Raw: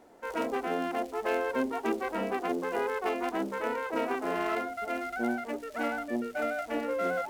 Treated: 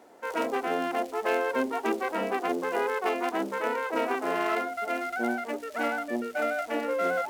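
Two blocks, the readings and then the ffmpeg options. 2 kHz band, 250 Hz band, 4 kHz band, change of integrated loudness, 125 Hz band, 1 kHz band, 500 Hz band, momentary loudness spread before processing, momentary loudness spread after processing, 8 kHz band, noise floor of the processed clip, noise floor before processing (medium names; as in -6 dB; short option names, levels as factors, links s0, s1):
+4.0 dB, +0.5 dB, +4.0 dB, +2.5 dB, no reading, +3.5 dB, +2.5 dB, 3 LU, 3 LU, +4.0 dB, -42 dBFS, -44 dBFS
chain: -af "highpass=f=300:p=1,volume=1.58"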